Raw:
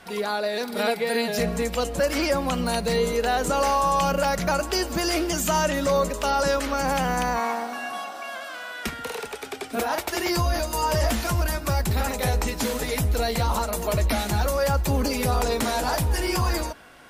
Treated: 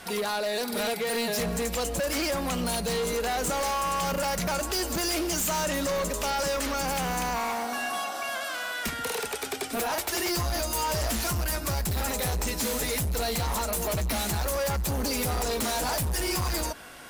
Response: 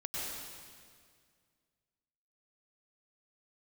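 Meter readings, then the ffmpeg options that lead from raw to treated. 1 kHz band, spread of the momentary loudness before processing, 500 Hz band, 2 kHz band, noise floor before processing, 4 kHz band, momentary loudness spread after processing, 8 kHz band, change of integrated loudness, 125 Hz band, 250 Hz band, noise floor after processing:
−5.0 dB, 9 LU, −5.0 dB, −3.0 dB, −37 dBFS, −1.0 dB, 4 LU, +1.5 dB, −3.5 dB, −5.5 dB, −4.5 dB, −35 dBFS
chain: -filter_complex "[0:a]asplit=2[link_01][link_02];[link_02]acompressor=threshold=-31dB:ratio=6,volume=2.5dB[link_03];[link_01][link_03]amix=inputs=2:normalize=0,equalizer=frequency=12000:width_type=o:width=2.1:gain=8,asoftclip=type=hard:threshold=-20.5dB,volume=-5dB"

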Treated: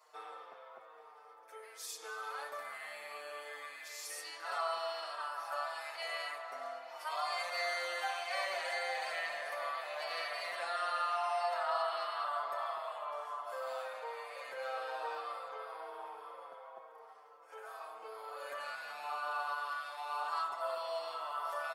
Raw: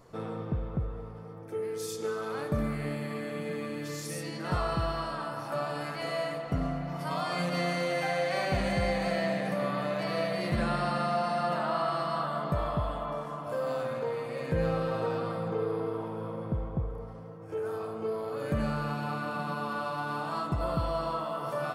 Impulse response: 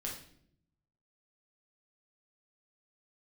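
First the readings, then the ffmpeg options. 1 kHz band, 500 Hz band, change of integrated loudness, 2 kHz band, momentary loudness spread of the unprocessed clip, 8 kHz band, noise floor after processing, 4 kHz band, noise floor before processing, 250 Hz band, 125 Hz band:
−4.0 dB, −11.0 dB, −7.0 dB, −3.0 dB, 7 LU, −3.0 dB, −57 dBFS, −2.5 dB, −41 dBFS, below −35 dB, below −40 dB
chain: -filter_complex "[0:a]highpass=frequency=700:width=0.5412,highpass=frequency=700:width=1.3066,asplit=2[link_01][link_02];[link_02]adelay=6,afreqshift=-1[link_03];[link_01][link_03]amix=inputs=2:normalize=1"

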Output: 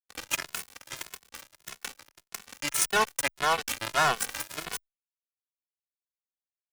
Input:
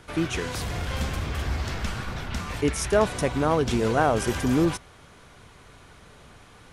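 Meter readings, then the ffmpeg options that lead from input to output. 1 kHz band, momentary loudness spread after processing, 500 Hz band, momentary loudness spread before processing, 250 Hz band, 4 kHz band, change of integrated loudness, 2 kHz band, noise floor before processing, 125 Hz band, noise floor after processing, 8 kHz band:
−1.5 dB, 18 LU, −11.5 dB, 10 LU, −19.5 dB, +1.0 dB, −3.0 dB, +1.0 dB, −51 dBFS, −20.0 dB, below −85 dBFS, +3.5 dB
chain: -filter_complex "[0:a]highpass=1500,equalizer=frequency=4200:width=1.8:gain=-12,asplit=2[link_01][link_02];[link_02]alimiter=level_in=4dB:limit=-24dB:level=0:latency=1:release=221,volume=-4dB,volume=2dB[link_03];[link_01][link_03]amix=inputs=2:normalize=0,acrusher=bits=3:mix=0:aa=0.5,asplit=2[link_04][link_05];[link_05]adelay=2.3,afreqshift=1.7[link_06];[link_04][link_06]amix=inputs=2:normalize=1,volume=8dB"

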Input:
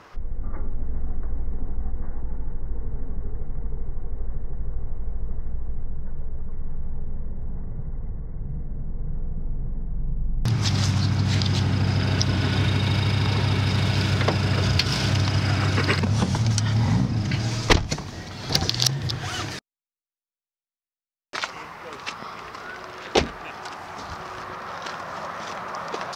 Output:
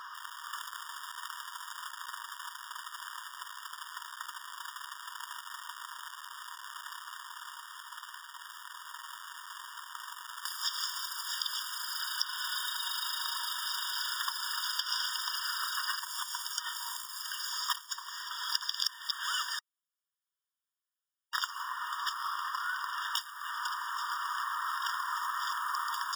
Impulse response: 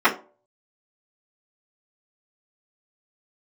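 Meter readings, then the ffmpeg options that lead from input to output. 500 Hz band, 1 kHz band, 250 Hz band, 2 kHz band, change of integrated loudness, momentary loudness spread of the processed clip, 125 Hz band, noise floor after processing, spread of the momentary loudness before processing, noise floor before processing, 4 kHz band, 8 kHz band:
below −40 dB, −3.5 dB, below −40 dB, −5.5 dB, −10.0 dB, 12 LU, below −40 dB, below −85 dBFS, 14 LU, below −85 dBFS, −5.0 dB, −4.5 dB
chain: -filter_complex "[0:a]acrusher=bits=4:mode=log:mix=0:aa=0.000001,acrossover=split=120|5400[link_01][link_02][link_03];[link_01]acompressor=threshold=-28dB:ratio=4[link_04];[link_02]acompressor=threshold=-36dB:ratio=4[link_05];[link_03]acompressor=threshold=-40dB:ratio=4[link_06];[link_04][link_05][link_06]amix=inputs=3:normalize=0,afftfilt=real='re*eq(mod(floor(b*sr/1024/940),2),1)':imag='im*eq(mod(floor(b*sr/1024/940),2),1)':win_size=1024:overlap=0.75,volume=6dB"

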